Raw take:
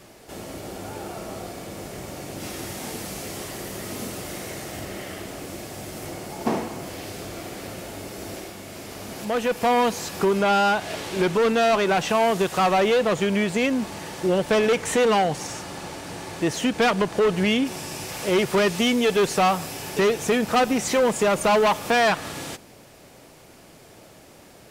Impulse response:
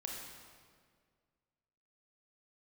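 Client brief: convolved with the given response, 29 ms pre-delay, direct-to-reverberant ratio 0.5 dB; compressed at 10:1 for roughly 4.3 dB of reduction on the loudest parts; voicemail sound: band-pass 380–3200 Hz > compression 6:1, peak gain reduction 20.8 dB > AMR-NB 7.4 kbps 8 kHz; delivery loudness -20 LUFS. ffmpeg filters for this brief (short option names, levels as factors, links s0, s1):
-filter_complex "[0:a]acompressor=threshold=0.0891:ratio=10,asplit=2[s0][s1];[1:a]atrim=start_sample=2205,adelay=29[s2];[s1][s2]afir=irnorm=-1:irlink=0,volume=1[s3];[s0][s3]amix=inputs=2:normalize=0,highpass=380,lowpass=3200,acompressor=threshold=0.0112:ratio=6,volume=15" -ar 8000 -c:a libopencore_amrnb -b:a 7400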